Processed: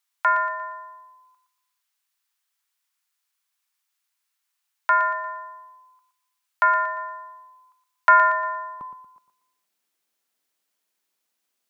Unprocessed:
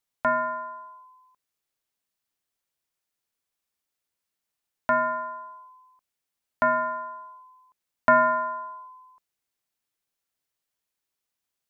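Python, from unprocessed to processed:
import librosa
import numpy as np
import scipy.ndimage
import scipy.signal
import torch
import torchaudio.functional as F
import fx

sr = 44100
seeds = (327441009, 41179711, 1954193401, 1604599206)

y = fx.highpass(x, sr, hz=fx.steps((0.0, 910.0), (8.81, 180.0)), slope=24)
y = fx.echo_feedback(y, sr, ms=117, feedback_pct=40, wet_db=-10.0)
y = y * librosa.db_to_amplitude(6.0)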